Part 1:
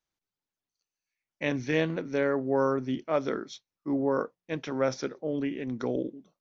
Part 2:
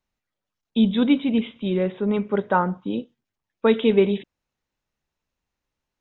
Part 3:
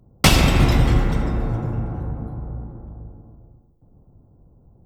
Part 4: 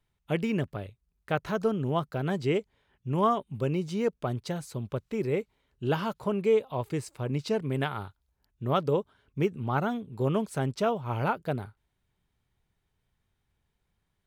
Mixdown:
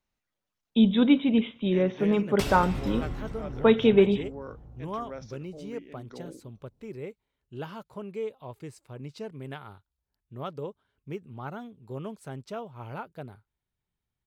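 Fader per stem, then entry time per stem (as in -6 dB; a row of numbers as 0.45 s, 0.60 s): -13.5 dB, -1.5 dB, -18.0 dB, -10.0 dB; 0.30 s, 0.00 s, 2.15 s, 1.70 s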